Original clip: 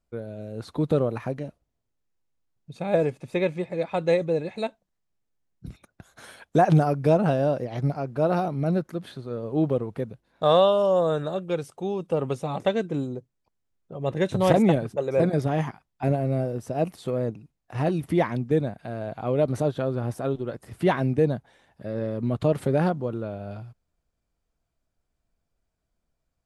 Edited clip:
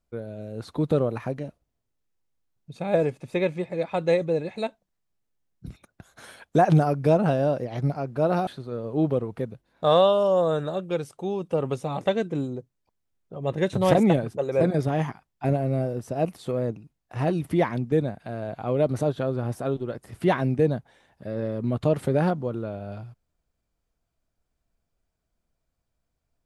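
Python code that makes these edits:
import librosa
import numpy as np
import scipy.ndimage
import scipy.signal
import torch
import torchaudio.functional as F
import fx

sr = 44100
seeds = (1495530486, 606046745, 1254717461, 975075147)

y = fx.edit(x, sr, fx.cut(start_s=8.47, length_s=0.59), tone=tone)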